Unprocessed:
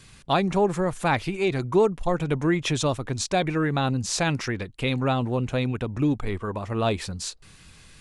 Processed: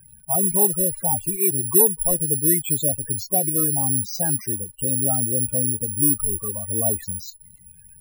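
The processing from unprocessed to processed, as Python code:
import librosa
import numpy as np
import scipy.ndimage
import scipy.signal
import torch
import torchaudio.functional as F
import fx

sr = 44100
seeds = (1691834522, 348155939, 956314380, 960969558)

y = (np.kron(x[::4], np.eye(4)[0]) * 4)[:len(x)]
y = fx.spec_topn(y, sr, count=32)
y = fx.dmg_crackle(y, sr, seeds[0], per_s=17.0, level_db=-50.0)
y = F.gain(torch.from_numpy(y), -2.0).numpy()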